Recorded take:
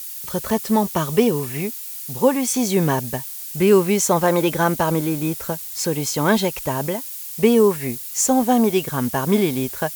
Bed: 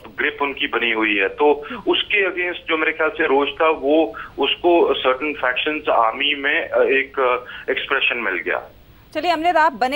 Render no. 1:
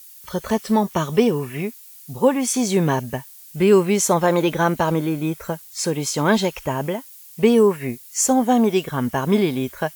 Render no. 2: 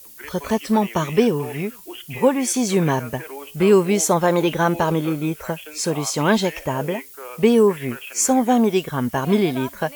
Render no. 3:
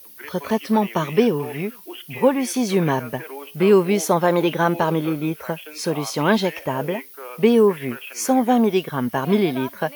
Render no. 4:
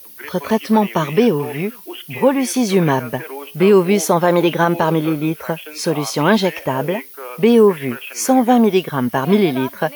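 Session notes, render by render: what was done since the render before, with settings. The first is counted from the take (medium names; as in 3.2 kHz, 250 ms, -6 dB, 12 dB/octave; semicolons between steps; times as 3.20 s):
noise print and reduce 11 dB
add bed -19 dB
high-pass 130 Hz 12 dB/octave; peaking EQ 7.5 kHz -13 dB 0.45 oct
trim +4.5 dB; peak limiter -3 dBFS, peak gain reduction 3 dB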